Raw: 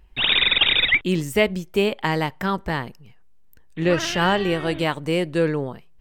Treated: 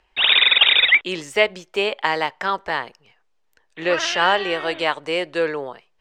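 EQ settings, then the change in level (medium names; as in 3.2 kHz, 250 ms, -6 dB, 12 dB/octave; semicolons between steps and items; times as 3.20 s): three-band isolator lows -21 dB, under 430 Hz, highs -23 dB, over 7.5 kHz; +4.0 dB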